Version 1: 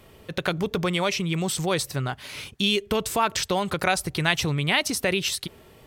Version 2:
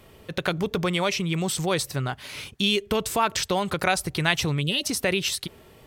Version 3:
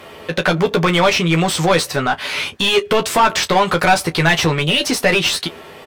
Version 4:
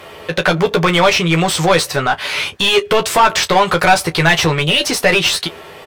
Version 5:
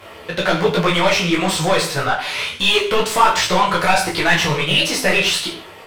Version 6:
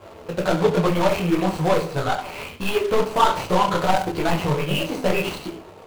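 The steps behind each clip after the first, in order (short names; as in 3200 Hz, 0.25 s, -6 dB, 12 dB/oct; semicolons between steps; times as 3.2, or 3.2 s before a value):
spectral gain 4.61–4.84, 590–2500 Hz -22 dB
overdrive pedal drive 25 dB, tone 2300 Hz, clips at -4.5 dBFS; on a send: early reflections 12 ms -5 dB, 31 ms -15.5 dB
bell 240 Hz -6.5 dB 0.59 oct; gain +2.5 dB
flange 0.72 Hz, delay 2.8 ms, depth 3.9 ms, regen -57%; non-linear reverb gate 0.19 s falling, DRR 3 dB; detuned doubles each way 50 cents; gain +3.5 dB
median filter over 25 samples; gain -1 dB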